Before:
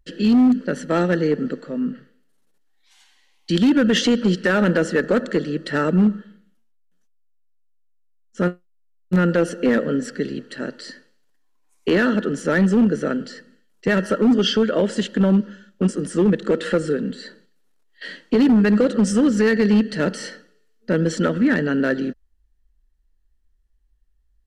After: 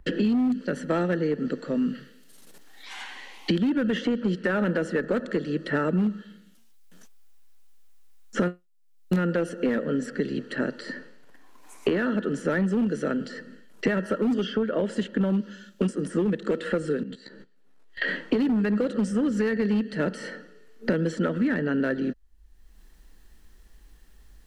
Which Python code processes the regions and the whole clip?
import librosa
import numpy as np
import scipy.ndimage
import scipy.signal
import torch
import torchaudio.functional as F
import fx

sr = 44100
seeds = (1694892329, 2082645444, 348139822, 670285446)

y = fx.chain(x, sr, fx.high_shelf(hz=6100.0, db=-8.5),
    fx.level_steps(step_db=19),
    fx.doubler(ms=15.0, db=-4.0), at=(17.03, 18.08))
y = fx.dynamic_eq(y, sr, hz=5900.0, q=0.87, threshold_db=-44.0, ratio=4.0, max_db=-6)
y = fx.band_squash(y, sr, depth_pct=100)
y = y * librosa.db_to_amplitude(-7.0)